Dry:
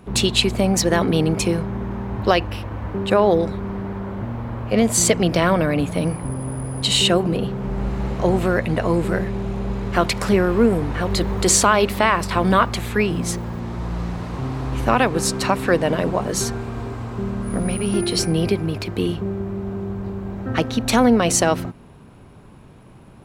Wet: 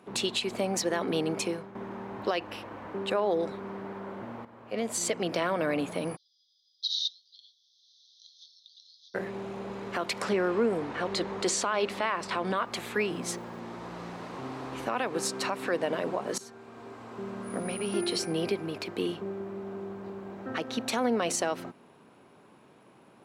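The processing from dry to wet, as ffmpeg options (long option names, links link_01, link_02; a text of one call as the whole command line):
ffmpeg -i in.wav -filter_complex "[0:a]asplit=3[link_01][link_02][link_03];[link_01]afade=type=out:start_time=6.15:duration=0.02[link_04];[link_02]asuperpass=centerf=4600:order=20:qfactor=1.6,afade=type=in:start_time=6.15:duration=0.02,afade=type=out:start_time=9.14:duration=0.02[link_05];[link_03]afade=type=in:start_time=9.14:duration=0.02[link_06];[link_04][link_05][link_06]amix=inputs=3:normalize=0,asettb=1/sr,asplit=3[link_07][link_08][link_09];[link_07]atrim=end=10.224[link_10];[link_08]atrim=start=10.22:end=12.57,asetpts=PTS-STARTPTS,afade=type=in:duration=0.004:curve=qsin,afade=type=out:start_time=2.346:duration=0.004:curve=qsin,lowpass=8000[link_11];[link_09]atrim=start=12.566[link_12];[link_10][link_11]acrossfade=duration=0.004:curve1=hsin:curve2=qsin[link_13];[link_13][link_12]acrossfade=duration=0.004:curve1=qsin:curve2=hsin,asplit=4[link_14][link_15][link_16][link_17];[link_14]atrim=end=1.75,asetpts=PTS-STARTPTS,afade=type=out:start_time=1.31:duration=0.44:silence=0.334965[link_18];[link_15]atrim=start=1.75:end=4.45,asetpts=PTS-STARTPTS,afade=type=in:duration=0.004:curve=hsin:silence=0.334965,afade=type=out:start_time=2.696:duration=0.004:curve=hsin:silence=0.223872[link_19];[link_16]atrim=start=4.45:end=16.38,asetpts=PTS-STARTPTS,afade=type=in:duration=0.95:silence=0.223872,afade=type=out:start_time=11.926:duration=0.004:curve=hsin:silence=0.112202[link_20];[link_17]atrim=start=16.38,asetpts=PTS-STARTPTS,afade=type=in:duration=1.01:silence=0.112202[link_21];[link_18][link_19][link_20][link_21]concat=n=4:v=0:a=1,highpass=290,alimiter=limit=-12dB:level=0:latency=1:release=142,highshelf=frequency=11000:gain=-7,volume=-6dB" out.wav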